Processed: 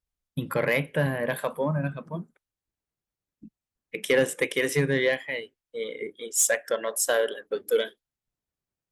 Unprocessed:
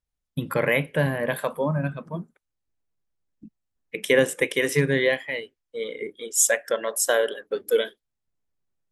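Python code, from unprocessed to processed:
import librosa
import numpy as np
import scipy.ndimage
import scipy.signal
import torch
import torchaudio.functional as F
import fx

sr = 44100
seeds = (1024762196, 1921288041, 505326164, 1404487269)

y = 10.0 ** (-13.0 / 20.0) * np.tanh(x / 10.0 ** (-13.0 / 20.0))
y = fx.cheby_harmonics(y, sr, harmonics=(3,), levels_db=(-24,), full_scale_db=-13.0)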